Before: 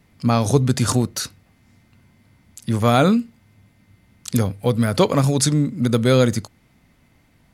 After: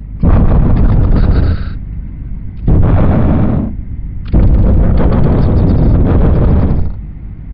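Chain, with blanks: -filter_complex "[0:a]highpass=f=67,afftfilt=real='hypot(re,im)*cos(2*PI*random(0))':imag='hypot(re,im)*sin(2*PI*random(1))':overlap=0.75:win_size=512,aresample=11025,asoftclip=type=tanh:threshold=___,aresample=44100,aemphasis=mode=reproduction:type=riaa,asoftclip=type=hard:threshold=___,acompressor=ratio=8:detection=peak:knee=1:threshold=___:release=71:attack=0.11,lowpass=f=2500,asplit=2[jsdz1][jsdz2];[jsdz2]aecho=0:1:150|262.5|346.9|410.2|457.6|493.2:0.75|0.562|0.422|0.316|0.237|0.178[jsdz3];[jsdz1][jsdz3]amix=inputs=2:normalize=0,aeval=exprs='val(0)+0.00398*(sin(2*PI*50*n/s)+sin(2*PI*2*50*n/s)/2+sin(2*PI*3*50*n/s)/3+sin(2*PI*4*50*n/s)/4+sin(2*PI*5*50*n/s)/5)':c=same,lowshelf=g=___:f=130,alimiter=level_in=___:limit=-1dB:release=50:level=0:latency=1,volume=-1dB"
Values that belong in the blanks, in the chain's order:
-15.5dB, -19dB, -25dB, 9, 17.5dB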